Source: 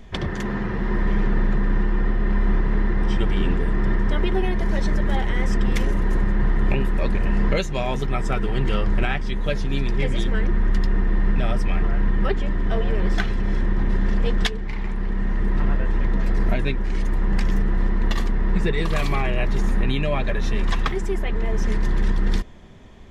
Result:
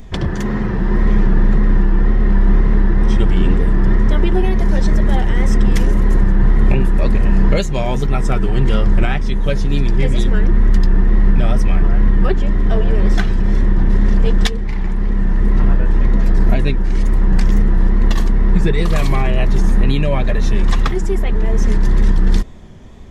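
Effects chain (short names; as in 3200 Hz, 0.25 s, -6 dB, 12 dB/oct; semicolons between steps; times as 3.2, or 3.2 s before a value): high shelf 2300 Hz -9 dB; wow and flutter 65 cents; tone controls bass +3 dB, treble +11 dB; gain +5 dB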